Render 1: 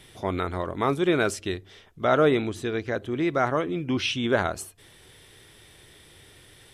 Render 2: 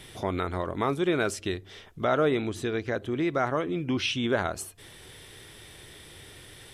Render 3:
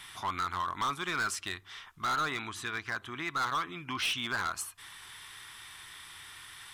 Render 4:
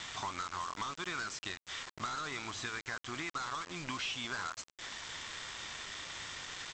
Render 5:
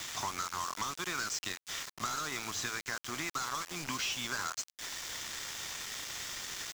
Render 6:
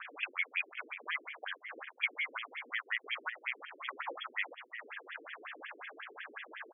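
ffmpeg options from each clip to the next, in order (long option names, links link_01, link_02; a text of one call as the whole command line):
ffmpeg -i in.wav -af "acompressor=threshold=-39dB:ratio=1.5,volume=4dB" out.wav
ffmpeg -i in.wav -af "lowshelf=frequency=750:width_type=q:width=3:gain=-12.5,asoftclip=type=hard:threshold=-27.5dB" out.wav
ffmpeg -i in.wav -af "acompressor=threshold=-41dB:ratio=8,aresample=16000,acrusher=bits=7:mix=0:aa=0.000001,aresample=44100,volume=4dB" out.wav
ffmpeg -i in.wav -filter_complex "[0:a]acrossover=split=180|870|2300[link_01][link_02][link_03][link_04];[link_04]aexciter=amount=2.7:drive=3.3:freq=5000[link_05];[link_01][link_02][link_03][link_05]amix=inputs=4:normalize=0,aeval=exprs='val(0)*gte(abs(val(0)),0.00794)':channel_layout=same,volume=2dB" out.wav
ffmpeg -i in.wav -filter_complex "[0:a]asplit=2[link_01][link_02];[link_02]adelay=400,highpass=300,lowpass=3400,asoftclip=type=hard:threshold=-30dB,volume=-10dB[link_03];[link_01][link_03]amix=inputs=2:normalize=0,lowpass=frequency=3000:width_type=q:width=0.5098,lowpass=frequency=3000:width_type=q:width=0.6013,lowpass=frequency=3000:width_type=q:width=0.9,lowpass=frequency=3000:width_type=q:width=2.563,afreqshift=-3500,afftfilt=real='re*between(b*sr/1024,330*pow(2500/330,0.5+0.5*sin(2*PI*5.5*pts/sr))/1.41,330*pow(2500/330,0.5+0.5*sin(2*PI*5.5*pts/sr))*1.41)':imag='im*between(b*sr/1024,330*pow(2500/330,0.5+0.5*sin(2*PI*5.5*pts/sr))/1.41,330*pow(2500/330,0.5+0.5*sin(2*PI*5.5*pts/sr))*1.41)':win_size=1024:overlap=0.75,volume=5dB" out.wav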